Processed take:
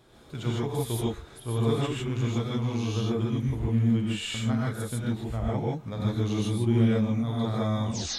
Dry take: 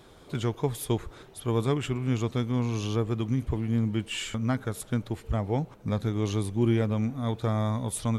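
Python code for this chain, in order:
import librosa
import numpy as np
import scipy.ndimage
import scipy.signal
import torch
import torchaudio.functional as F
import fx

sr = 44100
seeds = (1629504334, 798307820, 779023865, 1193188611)

y = fx.tape_stop_end(x, sr, length_s=0.36)
y = fx.dynamic_eq(y, sr, hz=3800.0, q=3.6, threshold_db=-54.0, ratio=4.0, max_db=5)
y = fx.rev_gated(y, sr, seeds[0], gate_ms=180, shape='rising', drr_db=-5.5)
y = y * librosa.db_to_amplitude(-7.0)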